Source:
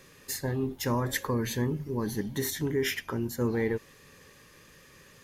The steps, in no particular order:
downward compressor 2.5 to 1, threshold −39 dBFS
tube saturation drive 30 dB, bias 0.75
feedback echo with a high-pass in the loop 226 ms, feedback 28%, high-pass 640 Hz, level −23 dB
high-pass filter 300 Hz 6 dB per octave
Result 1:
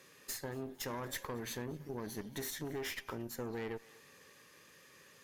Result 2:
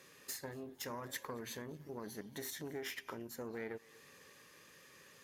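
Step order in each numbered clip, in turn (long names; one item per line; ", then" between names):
high-pass filter, then tube saturation, then feedback echo with a high-pass in the loop, then downward compressor
feedback echo with a high-pass in the loop, then downward compressor, then tube saturation, then high-pass filter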